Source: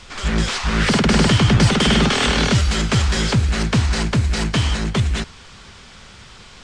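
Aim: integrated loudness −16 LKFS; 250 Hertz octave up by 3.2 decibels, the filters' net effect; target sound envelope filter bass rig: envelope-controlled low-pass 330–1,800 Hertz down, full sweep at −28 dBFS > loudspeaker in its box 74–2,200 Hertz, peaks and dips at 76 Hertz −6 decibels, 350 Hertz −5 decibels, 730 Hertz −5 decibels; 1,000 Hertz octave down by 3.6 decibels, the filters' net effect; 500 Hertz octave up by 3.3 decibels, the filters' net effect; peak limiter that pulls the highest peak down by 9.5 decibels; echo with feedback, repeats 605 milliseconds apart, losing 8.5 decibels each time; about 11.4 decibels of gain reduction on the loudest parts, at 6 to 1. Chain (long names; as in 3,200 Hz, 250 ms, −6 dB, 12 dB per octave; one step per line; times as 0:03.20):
parametric band 250 Hz +4 dB
parametric band 500 Hz +6.5 dB
parametric band 1,000 Hz −5 dB
downward compressor 6 to 1, threshold −21 dBFS
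brickwall limiter −20.5 dBFS
repeating echo 605 ms, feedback 38%, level −8.5 dB
envelope-controlled low-pass 330–1,800 Hz down, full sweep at −28 dBFS
loudspeaker in its box 74–2,200 Hz, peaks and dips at 76 Hz −6 dB, 350 Hz −5 dB, 730 Hz −5 dB
level +12 dB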